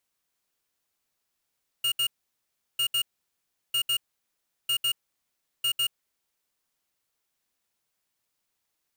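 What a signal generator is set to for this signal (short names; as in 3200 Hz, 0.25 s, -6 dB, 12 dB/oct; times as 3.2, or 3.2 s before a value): beep pattern square 2850 Hz, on 0.08 s, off 0.07 s, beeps 2, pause 0.72 s, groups 5, -25 dBFS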